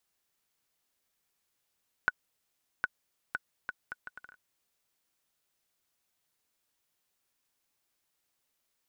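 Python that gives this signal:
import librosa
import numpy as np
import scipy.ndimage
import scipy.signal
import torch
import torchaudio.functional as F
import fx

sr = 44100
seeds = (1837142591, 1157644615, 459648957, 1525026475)

y = fx.bouncing_ball(sr, first_gap_s=0.76, ratio=0.67, hz=1480.0, decay_ms=33.0, level_db=-12.5)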